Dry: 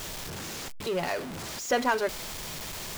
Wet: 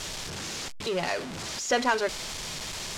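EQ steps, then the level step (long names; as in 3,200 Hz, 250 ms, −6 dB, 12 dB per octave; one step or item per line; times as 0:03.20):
low-pass filter 6,900 Hz 12 dB per octave
high-shelf EQ 2,900 Hz +7.5 dB
0.0 dB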